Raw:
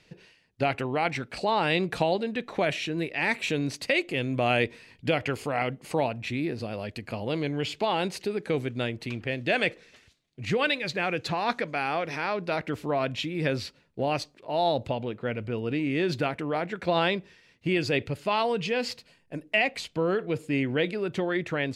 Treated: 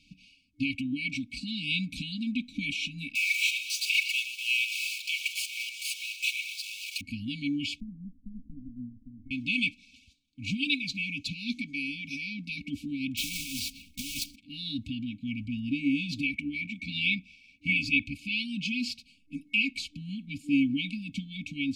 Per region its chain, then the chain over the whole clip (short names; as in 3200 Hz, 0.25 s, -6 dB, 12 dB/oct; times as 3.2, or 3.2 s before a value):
3.15–7.01 zero-crossing step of -26.5 dBFS + HPF 1400 Hz 24 dB/oct + delay with a stepping band-pass 0.119 s, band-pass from 2300 Hz, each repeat 0.7 oct, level -9 dB
7.8–9.31 minimum comb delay 1.4 ms + rippled Chebyshev low-pass 1300 Hz, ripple 9 dB
13.17–14.36 block floating point 3-bit + negative-ratio compressor -29 dBFS, ratio -0.5 + spectral compressor 2:1
16.23–18.54 bell 2300 Hz +10.5 dB 0.37 oct + AM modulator 75 Hz, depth 20%
whole clip: high shelf 7700 Hz -7 dB; comb 3.5 ms, depth 68%; FFT band-reject 300–2200 Hz